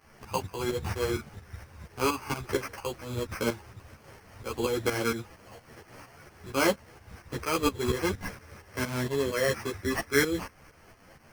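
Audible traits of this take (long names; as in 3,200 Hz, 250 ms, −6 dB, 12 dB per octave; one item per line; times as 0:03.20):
aliases and images of a low sample rate 3,700 Hz, jitter 0%
tremolo saw up 4.3 Hz, depth 75%
a quantiser's noise floor 10 bits, dither none
a shimmering, thickened sound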